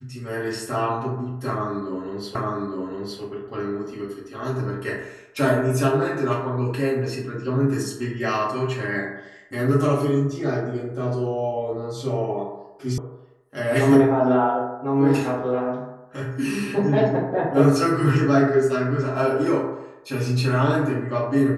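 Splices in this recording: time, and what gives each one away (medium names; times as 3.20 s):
2.35 s: repeat of the last 0.86 s
12.98 s: sound stops dead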